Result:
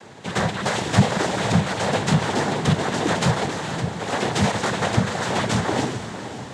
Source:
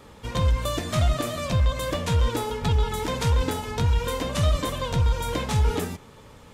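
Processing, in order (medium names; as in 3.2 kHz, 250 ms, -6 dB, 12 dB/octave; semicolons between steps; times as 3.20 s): 3.45–4.12 s: hard clipper -30.5 dBFS, distortion -13 dB; noise-vocoded speech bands 6; echo that smears into a reverb 494 ms, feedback 53%, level -11 dB; trim +6 dB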